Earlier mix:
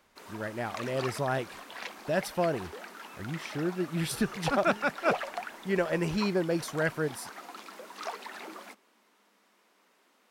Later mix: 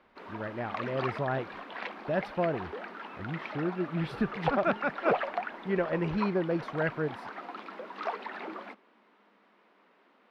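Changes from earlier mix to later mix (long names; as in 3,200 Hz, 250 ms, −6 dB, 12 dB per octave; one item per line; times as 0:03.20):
background +5.5 dB
master: add high-frequency loss of the air 370 metres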